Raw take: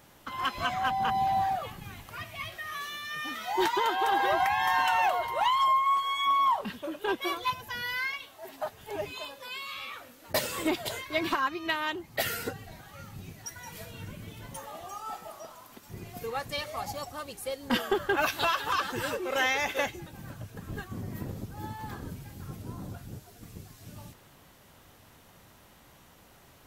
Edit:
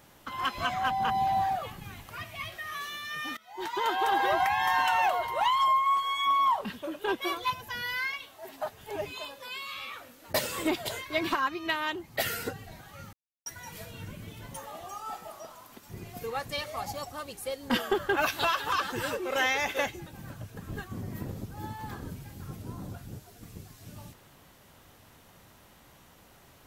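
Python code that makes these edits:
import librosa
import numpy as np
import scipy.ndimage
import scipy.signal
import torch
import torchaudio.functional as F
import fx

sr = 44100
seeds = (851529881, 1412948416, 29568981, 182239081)

y = fx.edit(x, sr, fx.fade_in_from(start_s=3.37, length_s=0.52, curve='qua', floor_db=-21.0),
    fx.silence(start_s=13.13, length_s=0.33), tone=tone)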